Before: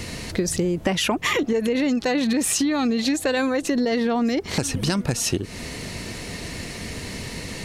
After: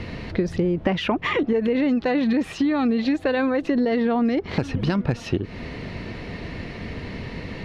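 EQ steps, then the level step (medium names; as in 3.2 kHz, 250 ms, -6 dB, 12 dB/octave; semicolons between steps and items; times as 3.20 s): distance through air 330 m; +1.5 dB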